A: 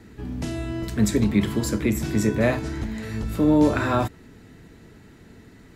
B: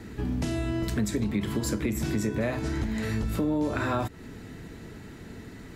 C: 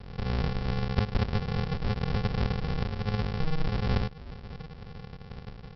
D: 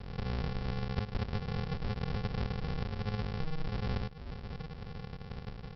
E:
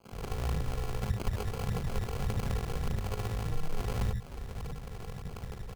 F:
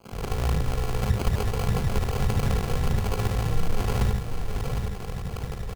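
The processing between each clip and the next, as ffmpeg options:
-filter_complex "[0:a]asplit=2[a][b];[b]alimiter=limit=-17dB:level=0:latency=1:release=101,volume=-2.5dB[c];[a][c]amix=inputs=2:normalize=0,acompressor=threshold=-26dB:ratio=4"
-af "aecho=1:1:7.3:0.54,aresample=11025,acrusher=samples=35:mix=1:aa=0.000001,aresample=44100"
-af "acompressor=threshold=-36dB:ratio=2"
-filter_complex "[0:a]acrossover=split=180|2800[a][b][c];[b]adelay=50[d];[a]adelay=120[e];[e][d][c]amix=inputs=3:normalize=0,acrusher=samples=24:mix=1:aa=0.000001,aphaser=in_gain=1:out_gain=1:delay=3:decay=0.29:speed=1.7:type=triangular,volume=2dB"
-af "aecho=1:1:757:0.473,volume=7.5dB"

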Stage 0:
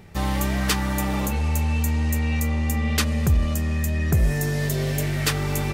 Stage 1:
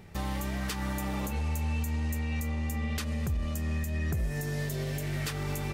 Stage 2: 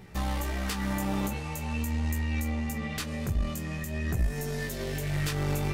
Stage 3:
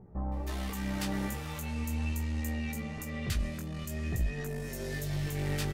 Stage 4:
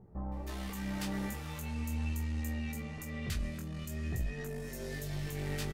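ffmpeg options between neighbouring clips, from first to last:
-af "alimiter=limit=-20dB:level=0:latency=1:release=229,volume=-4dB"
-af "flanger=delay=16:depth=4.6:speed=0.45,aeval=exprs='0.0631*(cos(1*acos(clip(val(0)/0.0631,-1,1)))-cos(1*PI/2))+0.0126*(cos(2*acos(clip(val(0)/0.0631,-1,1)))-cos(2*PI/2))':c=same,volume=5dB"
-filter_complex "[0:a]acrossover=split=1000[a][b];[b]adelay=320[c];[a][c]amix=inputs=2:normalize=0,volume=-3.5dB"
-filter_complex "[0:a]asplit=2[a][b];[b]adelay=25,volume=-11dB[c];[a][c]amix=inputs=2:normalize=0,volume=-4dB"

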